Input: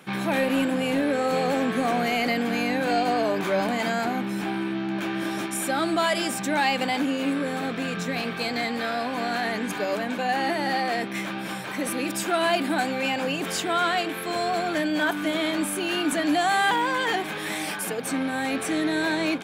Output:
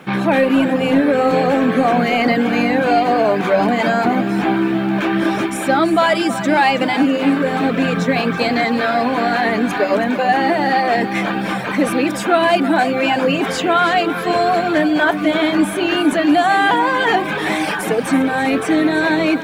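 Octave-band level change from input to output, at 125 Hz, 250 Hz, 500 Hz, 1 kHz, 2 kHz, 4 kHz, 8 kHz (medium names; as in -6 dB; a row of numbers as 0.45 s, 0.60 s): +10.0 dB, +10.5 dB, +10.0 dB, +10.0 dB, +8.5 dB, +5.0 dB, +0.5 dB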